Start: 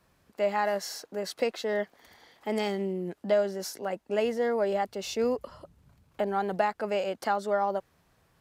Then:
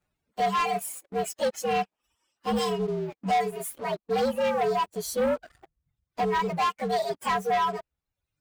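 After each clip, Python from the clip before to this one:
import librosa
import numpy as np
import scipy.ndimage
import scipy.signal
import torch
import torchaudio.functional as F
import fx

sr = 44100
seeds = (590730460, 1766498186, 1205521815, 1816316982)

y = fx.partial_stretch(x, sr, pct=119)
y = fx.dereverb_blind(y, sr, rt60_s=1.4)
y = fx.leveller(y, sr, passes=3)
y = y * 10.0 ** (-3.0 / 20.0)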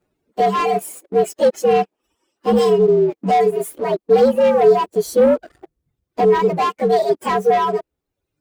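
y = fx.peak_eq(x, sr, hz=360.0, db=15.0, octaves=1.5)
y = y * 10.0 ** (3.0 / 20.0)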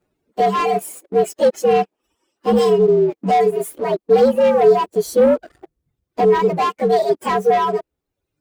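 y = x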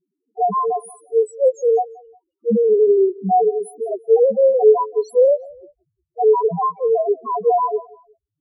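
y = fx.spec_topn(x, sr, count=1)
y = fx.echo_feedback(y, sr, ms=178, feedback_pct=37, wet_db=-23.0)
y = y * 10.0 ** (4.5 / 20.0)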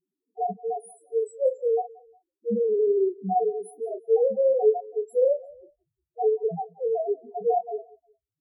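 y = fx.chorus_voices(x, sr, voices=6, hz=1.1, base_ms=28, depth_ms=4.1, mix_pct=25)
y = fx.brickwall_bandstop(y, sr, low_hz=910.0, high_hz=7300.0)
y = fx.comb_fb(y, sr, f0_hz=510.0, decay_s=0.33, harmonics='all', damping=0.0, mix_pct=30)
y = y * 10.0 ** (-3.0 / 20.0)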